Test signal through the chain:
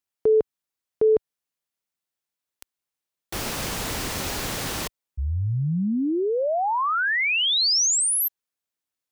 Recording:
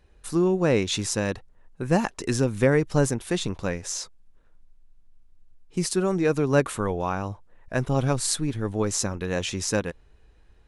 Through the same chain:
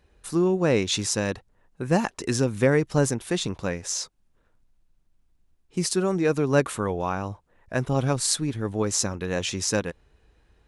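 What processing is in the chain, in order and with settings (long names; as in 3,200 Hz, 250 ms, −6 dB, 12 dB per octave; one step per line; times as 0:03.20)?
high-pass filter 52 Hz 6 dB per octave
dynamic equaliser 5,300 Hz, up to +3 dB, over −36 dBFS, Q 1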